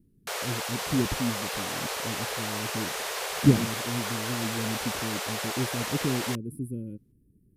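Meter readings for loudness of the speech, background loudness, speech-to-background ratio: -32.0 LUFS, -31.5 LUFS, -0.5 dB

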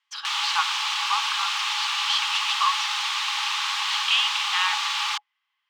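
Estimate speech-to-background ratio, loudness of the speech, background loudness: -3.0 dB, -27.0 LUFS, -24.0 LUFS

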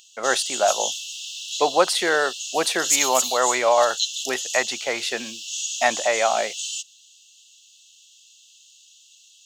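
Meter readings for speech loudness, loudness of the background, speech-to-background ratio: -22.5 LUFS, -26.0 LUFS, 3.5 dB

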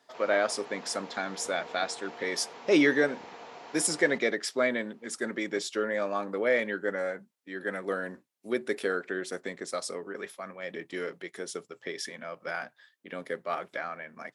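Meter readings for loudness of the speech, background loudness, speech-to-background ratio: -31.0 LUFS, -46.0 LUFS, 15.0 dB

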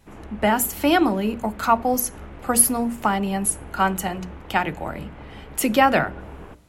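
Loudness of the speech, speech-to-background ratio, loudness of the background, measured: -21.5 LUFS, 20.0 dB, -41.5 LUFS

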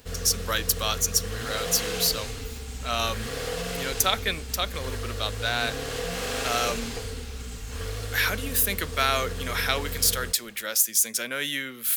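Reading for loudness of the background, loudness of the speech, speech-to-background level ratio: -33.0 LUFS, -25.5 LUFS, 7.5 dB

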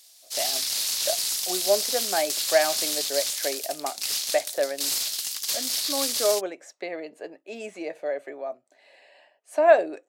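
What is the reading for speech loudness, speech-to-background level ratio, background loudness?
-28.0 LUFS, -2.5 dB, -25.5 LUFS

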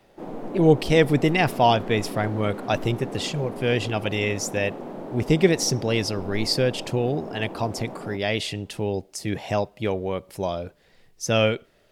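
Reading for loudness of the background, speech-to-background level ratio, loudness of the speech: -36.0 LUFS, 12.0 dB, -24.0 LUFS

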